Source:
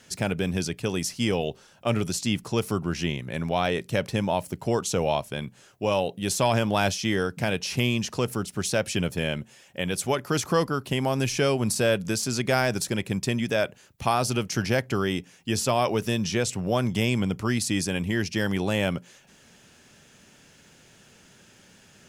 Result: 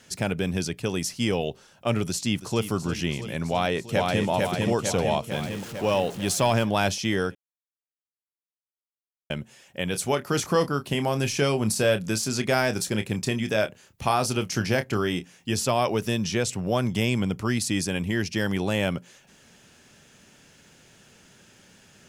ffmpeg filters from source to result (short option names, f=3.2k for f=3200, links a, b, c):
-filter_complex "[0:a]asplit=2[a][b];[b]afade=t=in:st=2.07:d=0.01,afade=t=out:st=2.67:d=0.01,aecho=0:1:330|660|990|1320|1650|1980|2310|2640|2970|3300|3630|3960:0.251189|0.200951|0.160761|0.128609|0.102887|0.0823095|0.0658476|0.0526781|0.0421425|0.033714|0.0269712|0.0215769[c];[a][c]amix=inputs=2:normalize=0,asplit=2[d][e];[e]afade=t=in:st=3.5:d=0.01,afade=t=out:st=4.28:d=0.01,aecho=0:1:450|900|1350|1800|2250|2700|3150|3600|4050:0.841395|0.504837|0.302902|0.181741|0.109045|0.0654269|0.0392561|0.0235537|0.0141322[f];[d][f]amix=inputs=2:normalize=0,asettb=1/sr,asplit=3[g][h][i];[g]atrim=end=5.314[j];[h]atrim=start=5.31:end=6.65,asetpts=PTS-STARTPTS,afade=t=in:d=0.004:c=qsin,afade=t=out:st=1.336:d=0.004:c=qsin,aeval=exprs='val(0)+0.5*0.0168*sgn(val(0))':c=same[k];[i]atrim=start=6.646[l];[j][k]acrossfade=d=0.004:c1=hsin:c2=qsin[m];[m][l]acrossfade=d=0.004:c1=qsin:c2=hsin,asettb=1/sr,asplit=3[n][o][p];[n]atrim=end=9.914[q];[o]atrim=start=9.91:end=15.54,asetpts=PTS-STARTPTS,afade=t=in:d=0.004:c=qsin,afade=t=out:st=5.626:d=0.004:c=qsin,asplit=2[r][s];[s]adelay=28,volume=-10dB[t];[r][t]amix=inputs=2:normalize=0,atrim=end_sample=248283[u];[p]atrim=start=15.536[v];[q][u]acrossfade=d=0.004:c1=hsin:c2=qsin[w];[w][v]acrossfade=d=0.004:c1=qsin:c2=hsin,asplit=3[x][y][z];[x]atrim=end=7.35,asetpts=PTS-STARTPTS,afade=t=out:st=7.346:d=0.004:c=hsin[aa];[y]atrim=start=7.35:end=9.3,asetpts=PTS-STARTPTS,volume=0[ab];[z]atrim=start=9.3,asetpts=PTS-STARTPTS,afade=t=in:d=0.004:c=hsin[ac];[aa][ab][ac]concat=n=3:v=0:a=1"